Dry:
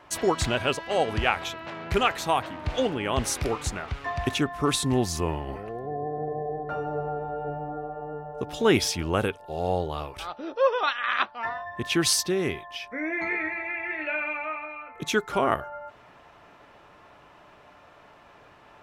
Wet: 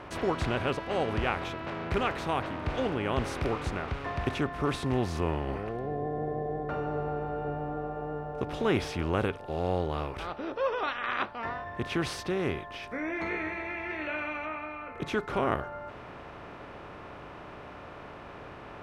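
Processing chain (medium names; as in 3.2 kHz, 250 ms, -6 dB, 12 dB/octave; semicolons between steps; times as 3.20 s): spectral levelling over time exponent 0.6; tone controls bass +4 dB, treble -14 dB, from 12.82 s treble -7 dB, from 14.45 s treble -15 dB; trim -9 dB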